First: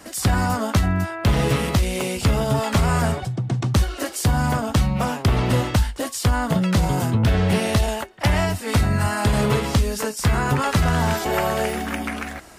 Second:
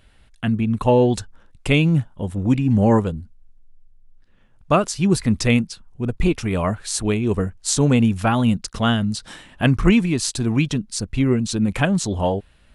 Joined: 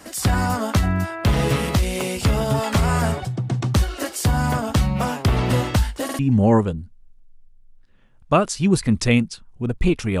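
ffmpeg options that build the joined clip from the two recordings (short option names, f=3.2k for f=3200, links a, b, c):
-filter_complex "[0:a]apad=whole_dur=10.2,atrim=end=10.2,asplit=3[a][b][c];[a]atrim=end=6.092[d];[b]atrim=start=6.038:end=6.092[e];[c]atrim=start=6.038:end=6.092[f];[1:a]atrim=start=2.578:end=6.59[g];[d][e]acrossfade=d=0.004:c1=hsin:c2=hsin[h];[h][f]acrossfade=d=0.004:c1=hsin:c2=hsin[i];[i][g]acrossfade=d=0.004:c1=hsin:c2=hsin"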